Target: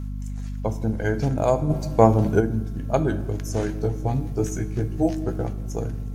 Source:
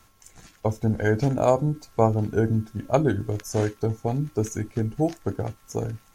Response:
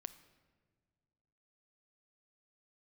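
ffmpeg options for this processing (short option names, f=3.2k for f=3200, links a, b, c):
-filter_complex "[0:a]asettb=1/sr,asplit=3[a][b][c];[a]atrim=end=3.674[d];[b]atrim=start=3.67:end=5.46,asetpts=PTS-STARTPTS,afade=t=in:d=0.004:c=qsin,afade=t=out:st=1.786:d=0.004:c=qsin,asplit=2[e][f];[f]adelay=16,volume=-2.5dB[g];[e][g]amix=inputs=2:normalize=0,atrim=end_sample=78939[h];[c]atrim=start=5.456[i];[d][h]acrossfade=d=0.004:c1=hsin:c2=qsin[j];[j][i]acrossfade=d=0.004:c1=qsin:c2=hsin[k];[1:a]atrim=start_sample=2205,asetrate=48510,aresample=44100[l];[k][l]afir=irnorm=-1:irlink=0,asplit=3[m][n][o];[m]afade=t=out:st=1.69:d=0.02[p];[n]acontrast=75,afade=t=in:st=1.69:d=0.02,afade=t=out:st=2.39:d=0.02[q];[o]afade=t=in:st=2.39:d=0.02[r];[p][q][r]amix=inputs=3:normalize=0,aeval=exprs='val(0)+0.0224*(sin(2*PI*50*n/s)+sin(2*PI*2*50*n/s)/2+sin(2*PI*3*50*n/s)/3+sin(2*PI*4*50*n/s)/4+sin(2*PI*5*50*n/s)/5)':c=same,volume=4dB"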